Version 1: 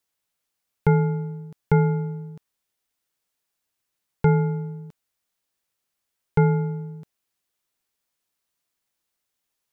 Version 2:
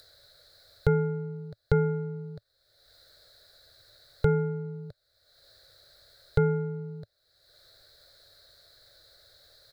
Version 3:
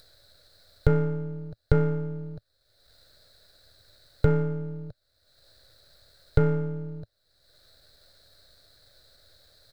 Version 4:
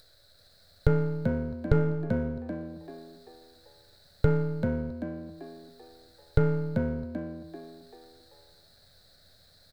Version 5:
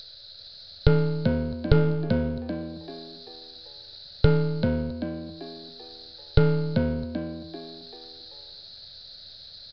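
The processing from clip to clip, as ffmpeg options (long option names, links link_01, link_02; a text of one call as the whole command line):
ffmpeg -i in.wav -filter_complex "[0:a]firequalizer=gain_entry='entry(110,0);entry(220,-27);entry(310,-14);entry(580,3);entry(920,-22);entry(1500,-3);entry(2800,-28);entry(4000,6);entry(5900,-18)':delay=0.05:min_phase=1,asplit=2[link_01][link_02];[link_02]acompressor=mode=upward:threshold=-31dB:ratio=2.5,volume=1dB[link_03];[link_01][link_03]amix=inputs=2:normalize=0,volume=-2.5dB" out.wav
ffmpeg -i in.wav -af "aeval=exprs='if(lt(val(0),0),0.447*val(0),val(0))':channel_layout=same,lowshelf=frequency=200:gain=6.5,volume=1dB" out.wav
ffmpeg -i in.wav -filter_complex "[0:a]asplit=6[link_01][link_02][link_03][link_04][link_05][link_06];[link_02]adelay=388,afreqshift=83,volume=-6dB[link_07];[link_03]adelay=776,afreqshift=166,volume=-14.4dB[link_08];[link_04]adelay=1164,afreqshift=249,volume=-22.8dB[link_09];[link_05]adelay=1552,afreqshift=332,volume=-31.2dB[link_10];[link_06]adelay=1940,afreqshift=415,volume=-39.6dB[link_11];[link_01][link_07][link_08][link_09][link_10][link_11]amix=inputs=6:normalize=0,volume=-2dB" out.wav
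ffmpeg -i in.wav -filter_complex "[0:a]acrossover=split=1100[link_01][link_02];[link_02]aexciter=amount=5.3:drive=4:freq=2700[link_03];[link_01][link_03]amix=inputs=2:normalize=0,aresample=11025,aresample=44100,volume=4dB" out.wav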